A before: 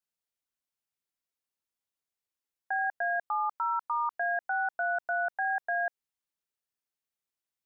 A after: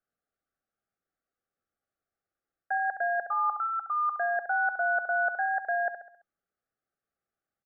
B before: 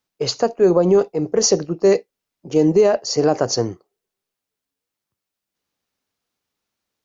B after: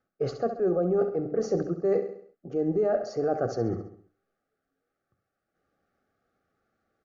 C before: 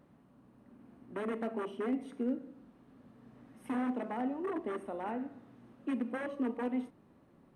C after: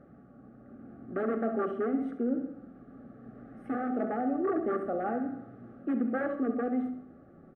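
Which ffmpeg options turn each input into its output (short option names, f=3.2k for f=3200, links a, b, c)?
-filter_complex "[0:a]aemphasis=mode=reproduction:type=75kf,areverse,acompressor=threshold=-33dB:ratio=4,areverse,aecho=1:1:67|134|201|268|335:0.266|0.125|0.0588|0.0276|0.013,asplit=2[a][b];[b]alimiter=level_in=9.5dB:limit=-24dB:level=0:latency=1,volume=-9.5dB,volume=-2.5dB[c];[a][c]amix=inputs=2:normalize=0,asuperstop=centerf=970:order=12:qfactor=3.4,highshelf=f=2k:t=q:w=1.5:g=-10.5,bandreject=f=50:t=h:w=6,bandreject=f=100:t=h:w=6,bandreject=f=150:t=h:w=6,bandreject=f=200:t=h:w=6,bandreject=f=250:t=h:w=6,bandreject=f=300:t=h:w=6,volume=4dB"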